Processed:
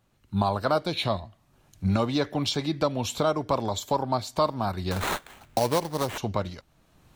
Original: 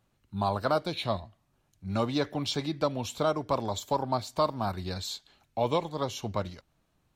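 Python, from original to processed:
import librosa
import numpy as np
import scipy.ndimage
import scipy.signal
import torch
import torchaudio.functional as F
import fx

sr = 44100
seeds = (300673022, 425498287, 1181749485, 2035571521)

y = fx.recorder_agc(x, sr, target_db=-19.0, rise_db_per_s=17.0, max_gain_db=30)
y = fx.sample_hold(y, sr, seeds[0], rate_hz=5100.0, jitter_pct=20, at=(4.91, 6.18))
y = y * librosa.db_to_amplitude(2.5)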